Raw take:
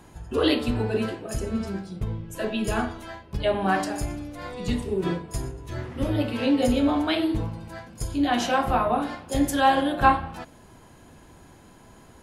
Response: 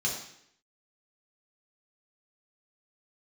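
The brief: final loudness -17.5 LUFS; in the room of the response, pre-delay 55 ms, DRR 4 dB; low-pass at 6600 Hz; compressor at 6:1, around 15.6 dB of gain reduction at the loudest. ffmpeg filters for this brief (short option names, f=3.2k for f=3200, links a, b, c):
-filter_complex "[0:a]lowpass=6.6k,acompressor=threshold=-31dB:ratio=6,asplit=2[a][b];[1:a]atrim=start_sample=2205,adelay=55[c];[b][c]afir=irnorm=-1:irlink=0,volume=-10.5dB[d];[a][d]amix=inputs=2:normalize=0,volume=16dB"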